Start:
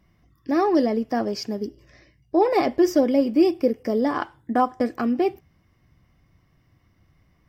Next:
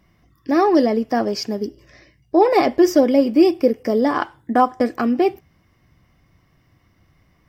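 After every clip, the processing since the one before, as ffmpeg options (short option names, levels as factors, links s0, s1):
-af "lowshelf=f=220:g=-4,volume=1.88"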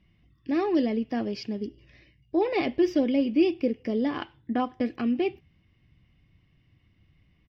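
-af "firequalizer=gain_entry='entry(110,0);entry(620,-11);entry(1300,-12);entry(2700,3);entry(7700,-25)':delay=0.05:min_phase=1,volume=0.668"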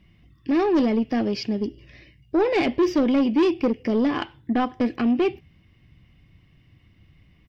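-af "asoftclip=type=tanh:threshold=0.0794,volume=2.37"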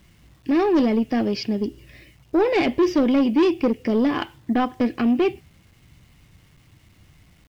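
-af "acrusher=bits=9:mix=0:aa=0.000001,volume=1.19"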